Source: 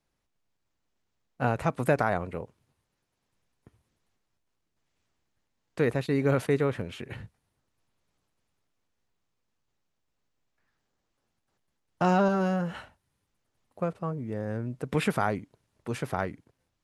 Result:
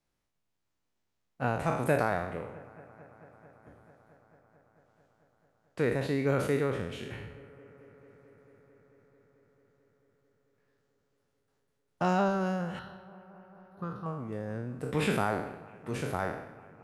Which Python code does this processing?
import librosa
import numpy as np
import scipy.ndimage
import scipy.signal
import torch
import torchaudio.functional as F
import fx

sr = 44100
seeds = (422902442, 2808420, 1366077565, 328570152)

y = fx.spec_trails(x, sr, decay_s=0.77)
y = fx.fixed_phaser(y, sr, hz=2300.0, stages=6, at=(12.79, 14.06))
y = fx.echo_bbd(y, sr, ms=221, stages=4096, feedback_pct=83, wet_db=-23)
y = F.gain(torch.from_numpy(y), -4.5).numpy()